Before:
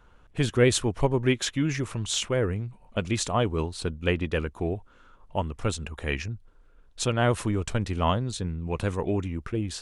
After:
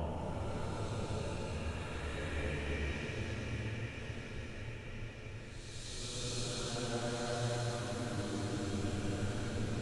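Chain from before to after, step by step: dynamic EQ 7800 Hz, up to -7 dB, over -47 dBFS, Q 1.1; compressor, threshold -38 dBFS, peak gain reduction 21.5 dB; echo with dull and thin repeats by turns 0.126 s, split 840 Hz, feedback 79%, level -2.5 dB; Paulstretch 4.1×, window 0.50 s, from 5.46; gain +1 dB

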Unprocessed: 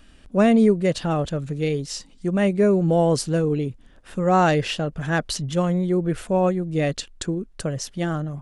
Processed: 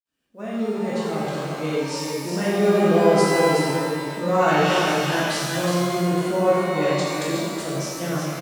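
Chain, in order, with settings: opening faded in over 1.89 s; HPF 160 Hz 12 dB/oct; companded quantiser 8-bit; on a send: echo 0.369 s -5 dB; on the sum: shimmer reverb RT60 1.7 s, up +12 st, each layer -8 dB, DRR -7 dB; gain -7 dB

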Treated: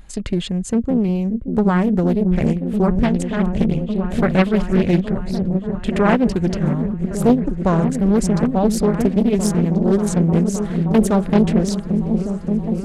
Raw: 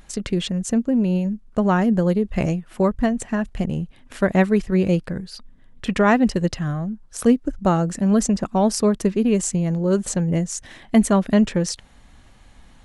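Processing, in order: low shelf 150 Hz +8.5 dB; notch 5700 Hz, Q 8.6; repeats that get brighter 0.577 s, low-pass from 200 Hz, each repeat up 1 oct, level -3 dB; 2.87–5.11 dynamic EQ 3200 Hz, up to +7 dB, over -43 dBFS, Q 1; Doppler distortion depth 0.64 ms; gain -1 dB

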